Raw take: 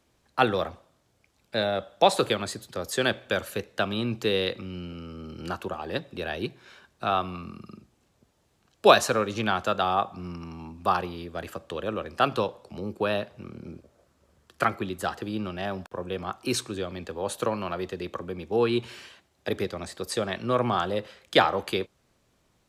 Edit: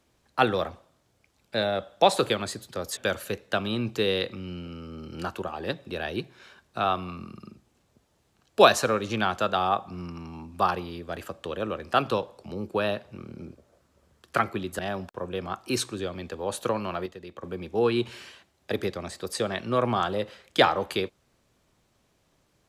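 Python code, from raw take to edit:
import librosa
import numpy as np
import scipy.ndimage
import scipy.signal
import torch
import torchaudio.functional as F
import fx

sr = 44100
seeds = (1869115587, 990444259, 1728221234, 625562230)

y = fx.edit(x, sr, fx.cut(start_s=2.97, length_s=0.26),
    fx.cut(start_s=15.05, length_s=0.51),
    fx.clip_gain(start_s=17.83, length_s=0.37, db=-8.5), tone=tone)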